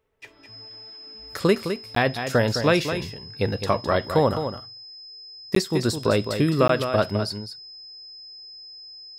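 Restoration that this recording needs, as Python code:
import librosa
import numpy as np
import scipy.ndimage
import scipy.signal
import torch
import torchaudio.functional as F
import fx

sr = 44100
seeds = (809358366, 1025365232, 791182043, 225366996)

y = fx.notch(x, sr, hz=5100.0, q=30.0)
y = fx.fix_interpolate(y, sr, at_s=(1.95, 5.55, 6.68), length_ms=13.0)
y = fx.fix_echo_inverse(y, sr, delay_ms=210, level_db=-8.5)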